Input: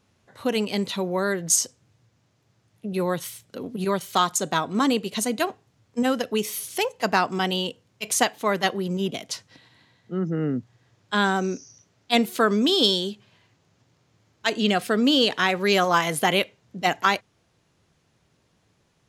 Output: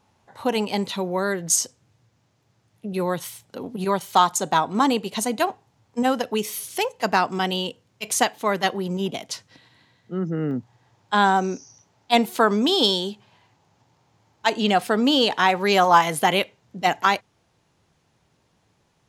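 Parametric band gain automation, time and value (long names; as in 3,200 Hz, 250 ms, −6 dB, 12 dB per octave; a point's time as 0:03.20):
parametric band 860 Hz 0.51 octaves
+12 dB
from 0:00.86 +3.5 dB
from 0:03.20 +9.5 dB
from 0:06.34 +3 dB
from 0:08.74 +9 dB
from 0:09.26 +1.5 dB
from 0:10.51 +11.5 dB
from 0:16.02 +5 dB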